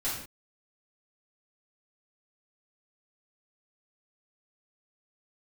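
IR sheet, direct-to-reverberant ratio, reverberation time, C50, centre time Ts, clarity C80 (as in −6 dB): −10.0 dB, non-exponential decay, 2.0 dB, 48 ms, 6.0 dB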